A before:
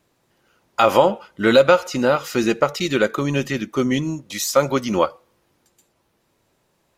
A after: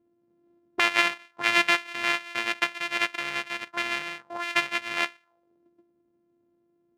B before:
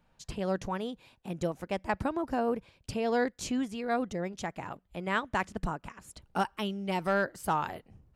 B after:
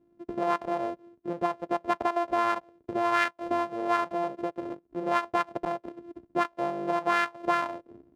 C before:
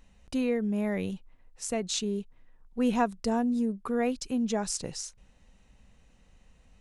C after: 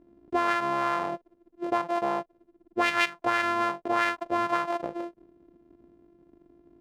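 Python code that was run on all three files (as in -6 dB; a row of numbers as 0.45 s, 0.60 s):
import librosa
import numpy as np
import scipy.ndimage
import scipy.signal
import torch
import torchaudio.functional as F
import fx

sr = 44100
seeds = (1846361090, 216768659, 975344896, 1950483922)

y = np.r_[np.sort(x[:len(x) // 128 * 128].reshape(-1, 128), axis=1).ravel(), x[len(x) // 128 * 128:]]
y = fx.auto_wah(y, sr, base_hz=290.0, top_hz=2300.0, q=2.1, full_db=-21.0, direction='up')
y = y * 10.0 ** (-30 / 20.0) / np.sqrt(np.mean(np.square(y)))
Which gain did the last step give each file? +2.0 dB, +11.0 dB, +11.0 dB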